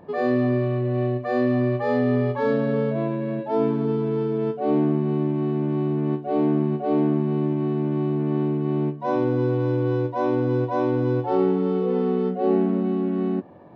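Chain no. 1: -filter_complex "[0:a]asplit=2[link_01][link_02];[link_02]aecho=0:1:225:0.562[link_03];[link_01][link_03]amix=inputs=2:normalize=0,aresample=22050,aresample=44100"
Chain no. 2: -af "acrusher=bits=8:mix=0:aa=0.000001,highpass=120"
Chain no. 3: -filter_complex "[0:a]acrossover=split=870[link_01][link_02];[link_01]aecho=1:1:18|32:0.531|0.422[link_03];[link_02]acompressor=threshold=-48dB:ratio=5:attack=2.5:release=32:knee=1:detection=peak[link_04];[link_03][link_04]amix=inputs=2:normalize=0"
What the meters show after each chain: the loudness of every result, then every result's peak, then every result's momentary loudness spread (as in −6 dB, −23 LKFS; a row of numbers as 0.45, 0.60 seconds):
−22.0, −23.5, −21.0 LKFS; −7.0, −8.5, −5.5 dBFS; 4, 3, 4 LU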